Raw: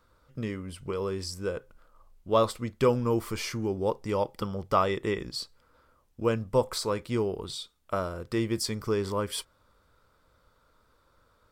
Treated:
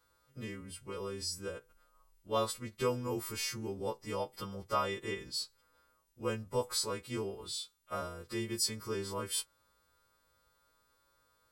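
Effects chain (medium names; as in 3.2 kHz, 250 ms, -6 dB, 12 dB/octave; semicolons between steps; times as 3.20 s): partials quantised in pitch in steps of 2 st; trim -9 dB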